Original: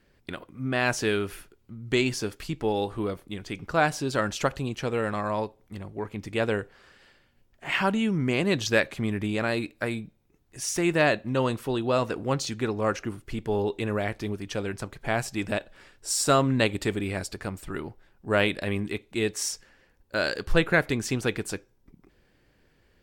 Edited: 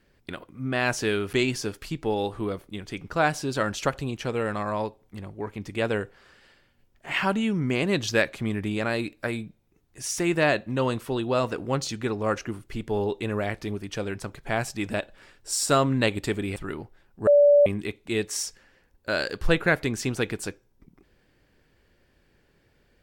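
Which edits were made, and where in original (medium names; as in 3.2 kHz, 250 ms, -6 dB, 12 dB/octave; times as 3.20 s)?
1.33–1.91 s: delete
17.14–17.62 s: delete
18.33–18.72 s: bleep 579 Hz -12.5 dBFS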